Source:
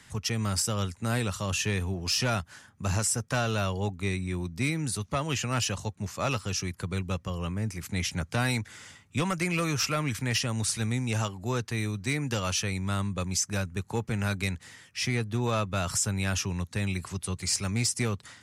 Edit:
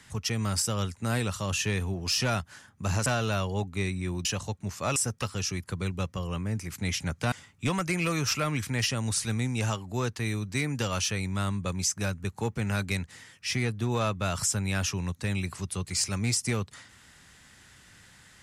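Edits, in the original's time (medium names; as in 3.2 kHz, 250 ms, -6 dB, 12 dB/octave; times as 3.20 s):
3.06–3.32 s: move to 6.33 s
4.51–5.62 s: delete
8.43–8.84 s: delete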